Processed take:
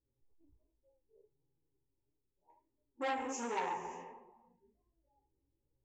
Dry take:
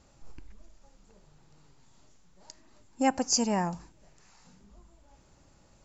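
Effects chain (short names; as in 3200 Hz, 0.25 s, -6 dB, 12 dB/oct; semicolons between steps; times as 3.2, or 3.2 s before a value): Wiener smoothing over 25 samples; fixed phaser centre 970 Hz, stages 8; on a send: thin delay 83 ms, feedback 83%, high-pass 2100 Hz, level -19.5 dB; on the sum: two-slope reverb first 0.7 s, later 2 s, from -16 dB, DRR -5 dB; spectral noise reduction 18 dB; flange 1.4 Hz, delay 6.2 ms, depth 6.8 ms, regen +45%; compressor 2:1, threshold -42 dBFS, peak gain reduction 11 dB; air absorption 120 m; low-pass opened by the level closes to 300 Hz, open at -43 dBFS; low shelf 130 Hz -10 dB; core saturation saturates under 1600 Hz; gain +5.5 dB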